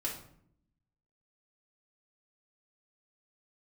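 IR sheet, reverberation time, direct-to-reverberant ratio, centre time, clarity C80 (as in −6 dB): 0.65 s, −4.5 dB, 27 ms, 10.5 dB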